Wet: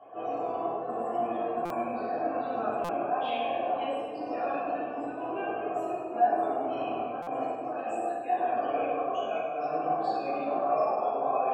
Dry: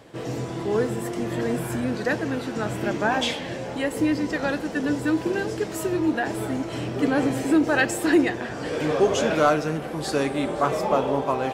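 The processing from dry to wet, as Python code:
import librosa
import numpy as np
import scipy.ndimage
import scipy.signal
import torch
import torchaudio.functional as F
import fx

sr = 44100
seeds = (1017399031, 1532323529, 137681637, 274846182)

y = fx.ellip_lowpass(x, sr, hz=3400.0, order=4, stop_db=40, at=(5.26, 5.73), fade=0.02)
y = fx.over_compress(y, sr, threshold_db=-26.0, ratio=-0.5)
y = 10.0 ** (-21.5 / 20.0) * np.tanh(y / 10.0 ** (-21.5 / 20.0))
y = fx.spec_topn(y, sr, count=64)
y = fx.vowel_filter(y, sr, vowel='a')
y = fx.echo_feedback(y, sr, ms=101, feedback_pct=50, wet_db=-8.0)
y = fx.room_shoebox(y, sr, seeds[0], volume_m3=250.0, walls='mixed', distance_m=3.2)
y = fx.buffer_glitch(y, sr, at_s=(1.65, 2.84, 7.22), block=256, repeats=8)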